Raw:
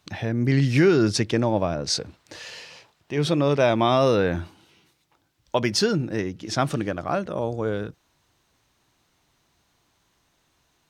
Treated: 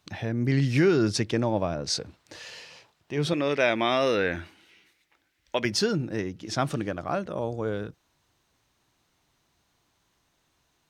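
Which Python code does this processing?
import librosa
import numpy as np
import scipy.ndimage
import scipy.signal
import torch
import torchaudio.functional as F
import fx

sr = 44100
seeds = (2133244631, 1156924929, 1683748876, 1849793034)

y = fx.graphic_eq(x, sr, hz=(125, 1000, 2000), db=(-11, -5, 11), at=(3.33, 5.65))
y = F.gain(torch.from_numpy(y), -3.5).numpy()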